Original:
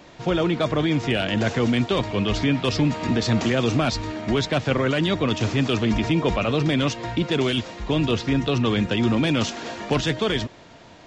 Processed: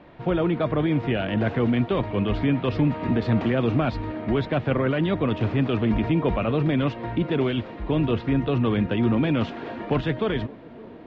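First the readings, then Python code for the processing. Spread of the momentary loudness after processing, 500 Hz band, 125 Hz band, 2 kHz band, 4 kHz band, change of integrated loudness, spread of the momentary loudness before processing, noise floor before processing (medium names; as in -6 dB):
5 LU, -1.0 dB, 0.0 dB, -5.0 dB, -10.5 dB, -1.5 dB, 4 LU, -47 dBFS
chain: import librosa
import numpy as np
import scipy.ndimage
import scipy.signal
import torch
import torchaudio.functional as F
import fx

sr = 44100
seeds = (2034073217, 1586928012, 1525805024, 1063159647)

p1 = fx.air_absorb(x, sr, metres=470.0)
y = p1 + fx.echo_wet_bandpass(p1, sr, ms=571, feedback_pct=76, hz=420.0, wet_db=-20.5, dry=0)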